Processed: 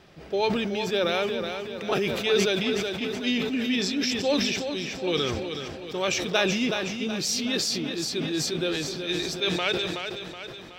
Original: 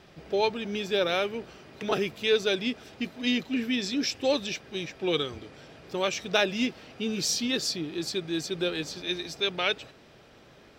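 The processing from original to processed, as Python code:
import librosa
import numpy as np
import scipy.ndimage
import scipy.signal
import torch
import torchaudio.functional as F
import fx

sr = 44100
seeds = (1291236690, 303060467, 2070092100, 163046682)

y = fx.echo_feedback(x, sr, ms=373, feedback_pct=54, wet_db=-8.0)
y = fx.sustainer(y, sr, db_per_s=29.0)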